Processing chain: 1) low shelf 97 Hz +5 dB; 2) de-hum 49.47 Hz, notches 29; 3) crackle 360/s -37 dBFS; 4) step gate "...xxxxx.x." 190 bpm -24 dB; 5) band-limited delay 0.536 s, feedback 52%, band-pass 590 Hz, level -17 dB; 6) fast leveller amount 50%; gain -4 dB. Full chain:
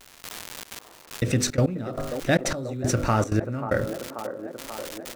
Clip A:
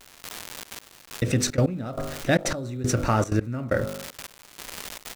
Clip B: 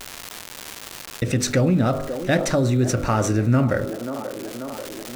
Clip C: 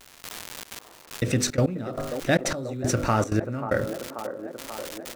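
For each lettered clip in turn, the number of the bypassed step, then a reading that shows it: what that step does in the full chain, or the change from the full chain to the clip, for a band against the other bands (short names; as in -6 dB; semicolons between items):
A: 5, momentary loudness spread change +3 LU; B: 4, 250 Hz band +3.5 dB; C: 1, 125 Hz band -1.5 dB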